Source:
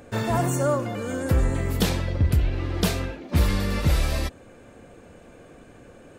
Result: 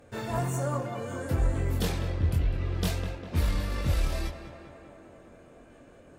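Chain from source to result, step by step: chorus voices 4, 0.63 Hz, delay 23 ms, depth 1.7 ms; tape echo 0.201 s, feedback 82%, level -8.5 dB, low-pass 2600 Hz; added harmonics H 4 -29 dB, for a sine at -10.5 dBFS; gain -4.5 dB

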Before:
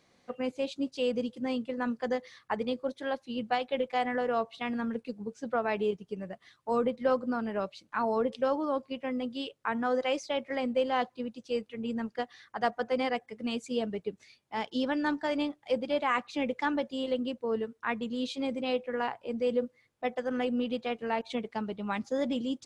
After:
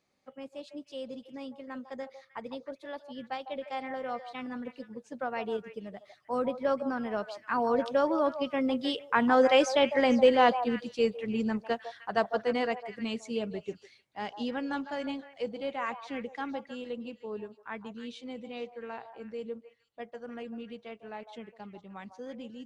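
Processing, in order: Doppler pass-by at 9.88, 20 m/s, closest 25 m; delay with a stepping band-pass 0.153 s, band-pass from 750 Hz, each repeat 1.4 oct, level -8 dB; gain +7.5 dB

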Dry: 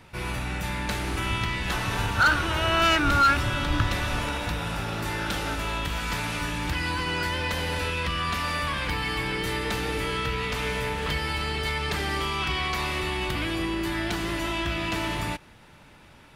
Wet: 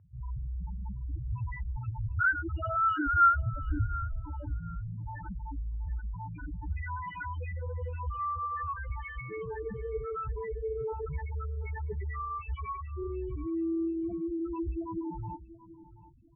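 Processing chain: loudest bins only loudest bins 2; dynamic EQ 410 Hz, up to +6 dB, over -57 dBFS, Q 7.2; inverse Chebyshev low-pass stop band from 6100 Hz, stop band 60 dB; on a send: feedback echo 0.731 s, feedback 24%, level -17 dB

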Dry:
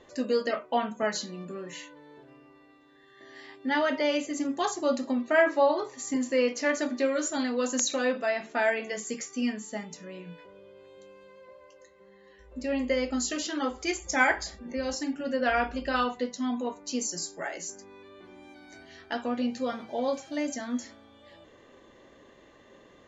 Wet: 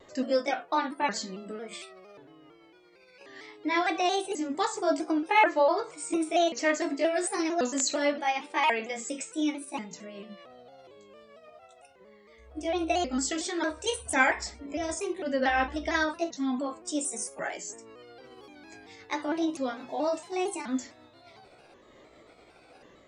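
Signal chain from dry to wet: repeated pitch sweeps +5.5 st, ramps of 1.087 s; shaped vibrato saw down 4.4 Hz, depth 100 cents; gain +1 dB

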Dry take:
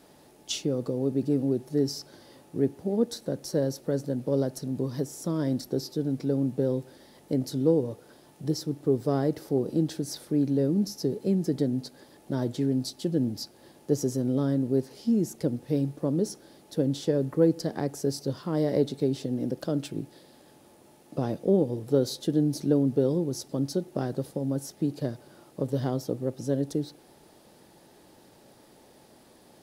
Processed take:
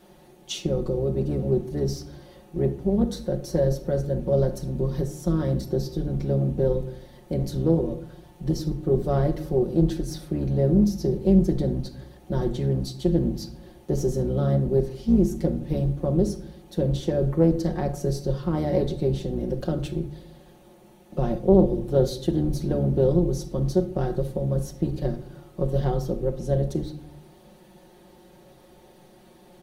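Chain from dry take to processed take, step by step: octaver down 2 oct, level -4 dB; bell 8100 Hz -5 dB 1.5 oct; notch 5100 Hz, Q 12; comb 5.6 ms, depth 77%; shoebox room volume 960 m³, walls furnished, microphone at 1.1 m; Doppler distortion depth 0.27 ms

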